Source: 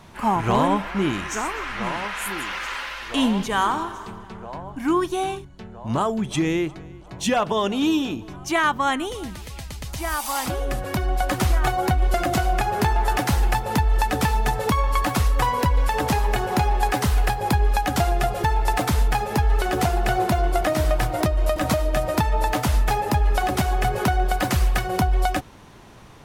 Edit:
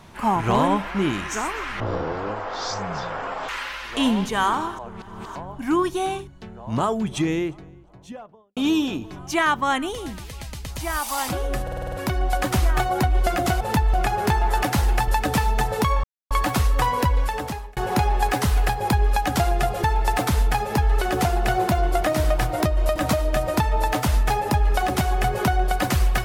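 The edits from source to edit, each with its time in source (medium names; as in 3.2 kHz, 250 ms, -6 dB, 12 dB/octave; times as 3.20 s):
1.80–2.66 s: speed 51%
3.96–4.53 s: reverse
6.17–7.74 s: studio fade out
10.80 s: stutter 0.05 s, 7 plays
13.62–13.95 s: move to 12.48 s
14.91 s: insert silence 0.27 s
15.70–16.37 s: fade out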